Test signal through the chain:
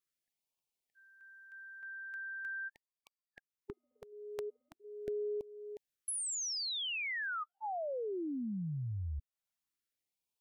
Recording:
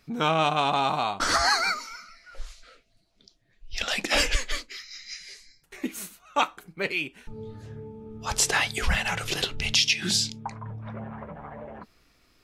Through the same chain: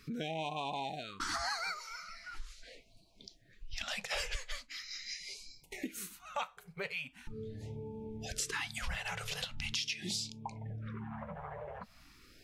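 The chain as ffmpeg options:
-af "acompressor=threshold=-47dB:ratio=2.5,afftfilt=real='re*(1-between(b*sr/1024,260*pow(1600/260,0.5+0.5*sin(2*PI*0.41*pts/sr))/1.41,260*pow(1600/260,0.5+0.5*sin(2*PI*0.41*pts/sr))*1.41))':imag='im*(1-between(b*sr/1024,260*pow(1600/260,0.5+0.5*sin(2*PI*0.41*pts/sr))/1.41,260*pow(1600/260,0.5+0.5*sin(2*PI*0.41*pts/sr))*1.41))':win_size=1024:overlap=0.75,volume=3.5dB"

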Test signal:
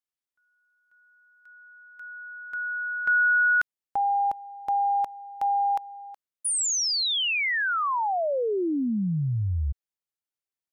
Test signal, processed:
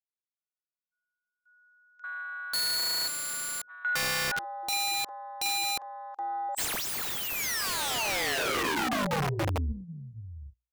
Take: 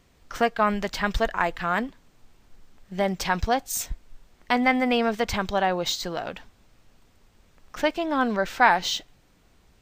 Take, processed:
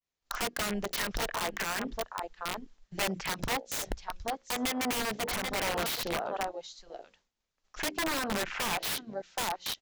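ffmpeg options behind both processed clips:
-filter_complex "[0:a]acrossover=split=270|3600[a][b][c];[c]acontrast=55[d];[a][b][d]amix=inputs=3:normalize=0,lowshelf=f=390:g=-9.5,aecho=1:1:773:0.224,agate=range=-33dB:threshold=-51dB:ratio=3:release=297:detection=peak,bandreject=f=60:t=h:w=6,bandreject=f=120:t=h:w=6,bandreject=f=180:t=h:w=6,bandreject=f=240:t=h:w=6,bandreject=f=300:t=h:w=6,bandreject=f=360:t=h:w=6,bandreject=f=420:t=h:w=6,bandreject=f=480:t=h:w=6,bandreject=f=540:t=h:w=6,aresample=16000,aresample=44100,acompressor=threshold=-26dB:ratio=3:attack=0.18:release=215:knee=1:detection=rms,afwtdn=0.0141,aeval=exprs='(mod(31.6*val(0)+1,2)-1)/31.6':c=same,adynamicequalizer=threshold=0.00316:dfrequency=3700:dqfactor=0.7:tfrequency=3700:tqfactor=0.7:attack=5:release=100:ratio=0.375:range=2.5:mode=cutabove:tftype=highshelf,volume=6dB"

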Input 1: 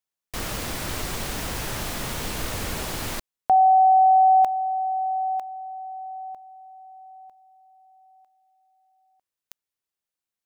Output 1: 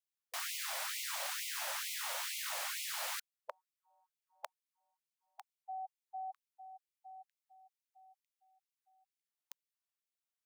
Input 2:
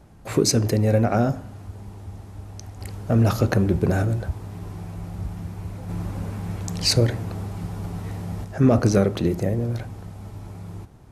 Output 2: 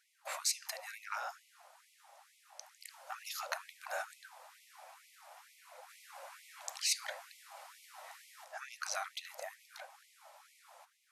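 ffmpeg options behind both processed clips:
-af "afftfilt=real='re*lt(hypot(re,im),0.251)':imag='im*lt(hypot(re,im),0.251)':win_size=1024:overlap=0.75,afftfilt=real='re*gte(b*sr/1024,490*pow(2000/490,0.5+0.5*sin(2*PI*2.2*pts/sr)))':imag='im*gte(b*sr/1024,490*pow(2000/490,0.5+0.5*sin(2*PI*2.2*pts/sr)))':win_size=1024:overlap=0.75,volume=-6.5dB"

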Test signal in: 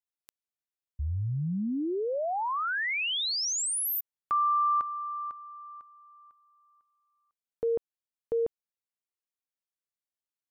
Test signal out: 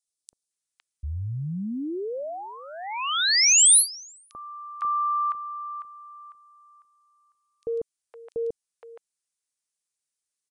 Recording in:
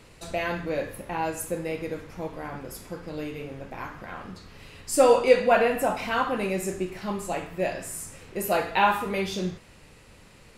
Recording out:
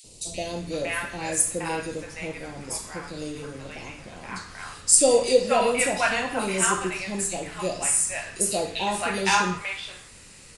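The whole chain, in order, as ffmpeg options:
-filter_complex "[0:a]aresample=22050,aresample=44100,crystalizer=i=4.5:c=0,acrossover=split=760|3200[a][b][c];[a]adelay=40[d];[b]adelay=510[e];[d][e][c]amix=inputs=3:normalize=0"

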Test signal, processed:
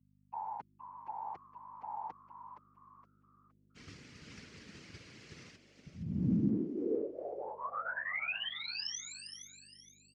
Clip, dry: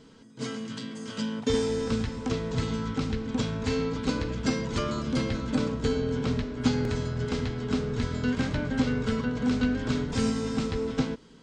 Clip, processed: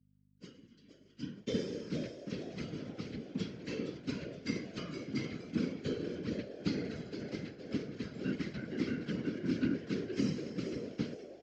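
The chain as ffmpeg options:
-filter_complex "[0:a]agate=range=-33dB:threshold=-24dB:ratio=3:detection=peak,equalizer=f=760:w=0.85:g=-14.5,aecho=1:1:4.8:0.98,acrossover=split=440[a][b];[b]acompressor=threshold=-28dB:ratio=6[c];[a][c]amix=inputs=2:normalize=0,afftfilt=real='hypot(re,im)*cos(2*PI*random(0))':imag='hypot(re,im)*sin(2*PI*random(1))':win_size=512:overlap=0.75,aeval=exprs='val(0)+0.001*(sin(2*PI*50*n/s)+sin(2*PI*2*50*n/s)/2+sin(2*PI*3*50*n/s)/3+sin(2*PI*4*50*n/s)/4+sin(2*PI*5*50*n/s)/5)':c=same,acrossover=split=650|780[d][e][f];[e]acrusher=bits=4:mix=0:aa=0.5[g];[d][g][f]amix=inputs=3:normalize=0,highpass=120,equalizer=f=480:t=q:w=4:g=3,equalizer=f=2.1k:t=q:w=4:g=3,equalizer=f=3.6k:t=q:w=4:g=-7,lowpass=f=5.5k:w=0.5412,lowpass=f=5.5k:w=1.3066,asplit=2[h][i];[i]asplit=4[j][k][l][m];[j]adelay=467,afreqshift=110,volume=-9.5dB[n];[k]adelay=934,afreqshift=220,volume=-18.6dB[o];[l]adelay=1401,afreqshift=330,volume=-27.7dB[p];[m]adelay=1868,afreqshift=440,volume=-36.9dB[q];[n][o][p][q]amix=inputs=4:normalize=0[r];[h][r]amix=inputs=2:normalize=0,volume=-2dB"

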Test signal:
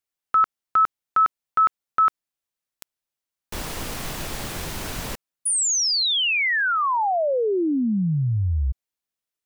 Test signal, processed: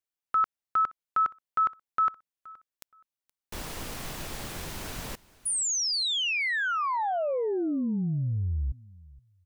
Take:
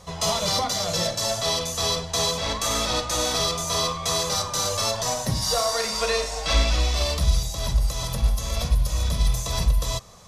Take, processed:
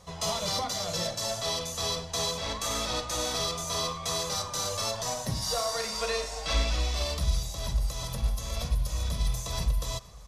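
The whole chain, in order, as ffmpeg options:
-af "aecho=1:1:472|944:0.0794|0.0167,volume=-6.5dB"

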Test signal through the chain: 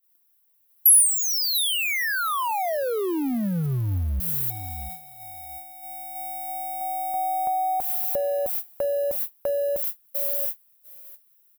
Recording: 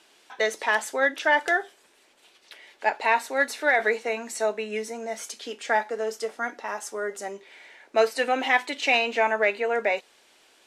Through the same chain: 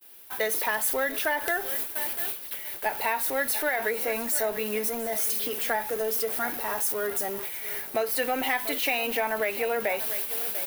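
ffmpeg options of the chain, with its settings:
-filter_complex "[0:a]aeval=exprs='val(0)+0.5*0.0224*sgn(val(0))':c=same,lowshelf=f=180:g=5,asplit=2[a][b];[b]aecho=0:1:692|1384:0.158|0.0333[c];[a][c]amix=inputs=2:normalize=0,acompressor=threshold=-20dB:ratio=10,agate=range=-47dB:threshold=-37dB:ratio=16:detection=peak,acontrast=39,aexciter=amount=9.9:drive=2.7:freq=10k,alimiter=level_in=0.5dB:limit=-1dB:release=50:level=0:latency=1,volume=-8.5dB"

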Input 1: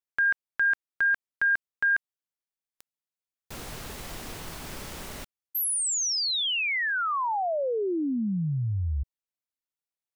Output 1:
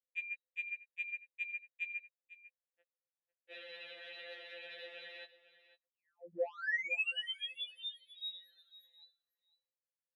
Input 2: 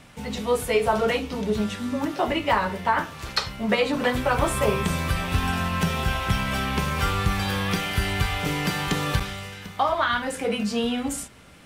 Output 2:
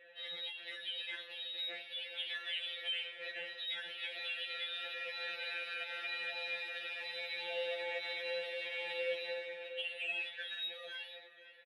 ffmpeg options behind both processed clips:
-filter_complex "[0:a]bandreject=f=50:t=h:w=6,bandreject=f=100:t=h:w=6,bandreject=f=150:t=h:w=6,bandreject=f=200:t=h:w=6,bandreject=f=250:t=h:w=6,acompressor=threshold=-34dB:ratio=20:attack=26:release=31:knee=6:detection=peak,asoftclip=type=tanh:threshold=-27dB,lowpass=f=3.4k:t=q:w=0.5098,lowpass=f=3.4k:t=q:w=0.6013,lowpass=f=3.4k:t=q:w=0.9,lowpass=f=3.4k:t=q:w=2.563,afreqshift=-4000,adynamicsmooth=sensitivity=6.5:basefreq=1.6k,asplit=3[a][b][c];[a]bandpass=f=530:t=q:w=8,volume=0dB[d];[b]bandpass=f=1.84k:t=q:w=8,volume=-6dB[e];[c]bandpass=f=2.48k:t=q:w=8,volume=-9dB[f];[d][e][f]amix=inputs=3:normalize=0,aecho=1:1:499:0.15,afftfilt=real='re*2.83*eq(mod(b,8),0)':imag='im*2.83*eq(mod(b,8),0)':win_size=2048:overlap=0.75,volume=12dB"

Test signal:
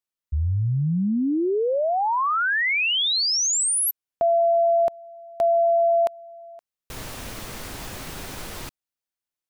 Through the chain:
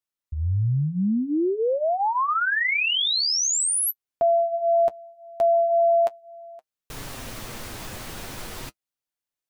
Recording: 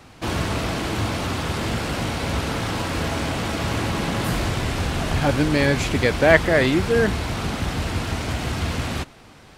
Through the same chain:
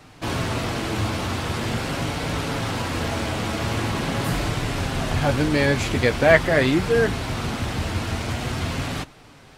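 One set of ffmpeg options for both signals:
-af "flanger=delay=6.5:depth=3:regen=-41:speed=0.44:shape=triangular,volume=3dB"

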